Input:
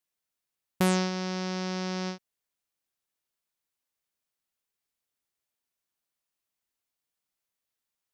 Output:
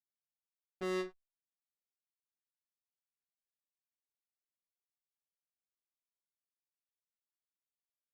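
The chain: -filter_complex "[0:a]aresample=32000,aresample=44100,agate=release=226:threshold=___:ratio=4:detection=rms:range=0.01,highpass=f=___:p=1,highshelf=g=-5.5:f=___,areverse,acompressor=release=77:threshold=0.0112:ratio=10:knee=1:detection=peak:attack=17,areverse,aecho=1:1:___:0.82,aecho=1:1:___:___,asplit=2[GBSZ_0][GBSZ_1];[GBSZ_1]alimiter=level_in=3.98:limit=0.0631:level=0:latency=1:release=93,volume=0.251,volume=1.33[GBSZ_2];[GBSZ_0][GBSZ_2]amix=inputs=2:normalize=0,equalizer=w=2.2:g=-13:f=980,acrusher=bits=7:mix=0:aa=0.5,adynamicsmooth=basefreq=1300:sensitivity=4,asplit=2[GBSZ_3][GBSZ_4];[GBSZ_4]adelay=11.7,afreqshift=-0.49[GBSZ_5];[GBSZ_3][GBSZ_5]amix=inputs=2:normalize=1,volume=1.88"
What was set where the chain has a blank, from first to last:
0.1, 300, 2900, 2.9, 87, 0.0794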